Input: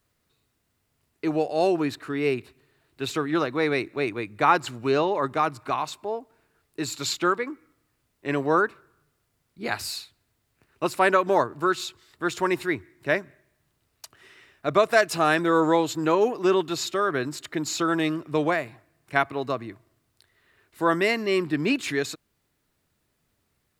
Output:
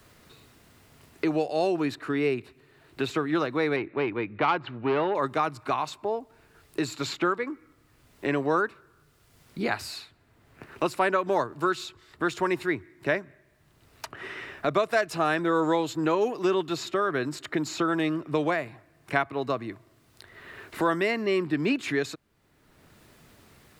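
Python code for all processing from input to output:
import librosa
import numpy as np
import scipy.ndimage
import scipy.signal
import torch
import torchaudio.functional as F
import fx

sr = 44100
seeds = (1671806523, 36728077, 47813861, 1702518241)

y = fx.chain(x, sr, fx.lowpass(hz=3300.0, slope=24),
    fx.transformer_sat(knee_hz=1300.0), at=(3.76, 5.15))
y = fx.high_shelf(y, sr, hz=5600.0, db=-6.0)
y = fx.band_squash(y, sr, depth_pct=70)
y = F.gain(torch.from_numpy(y), -2.0).numpy()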